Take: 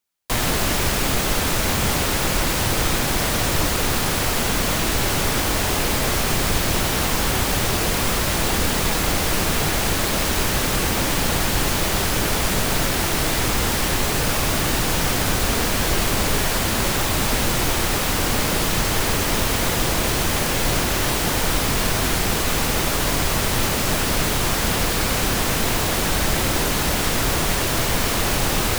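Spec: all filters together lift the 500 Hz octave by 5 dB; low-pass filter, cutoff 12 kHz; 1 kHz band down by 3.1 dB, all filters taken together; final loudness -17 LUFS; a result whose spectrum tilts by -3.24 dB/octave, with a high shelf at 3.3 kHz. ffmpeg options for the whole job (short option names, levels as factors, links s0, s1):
-af "lowpass=12000,equalizer=f=500:t=o:g=8,equalizer=f=1000:t=o:g=-7.5,highshelf=f=3300:g=4.5,volume=1.19"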